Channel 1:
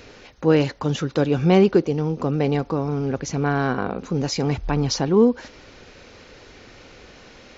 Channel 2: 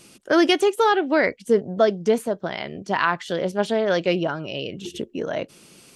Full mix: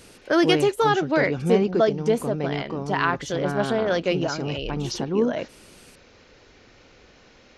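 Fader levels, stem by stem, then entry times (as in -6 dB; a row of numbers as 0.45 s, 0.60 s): -7.0 dB, -2.0 dB; 0.00 s, 0.00 s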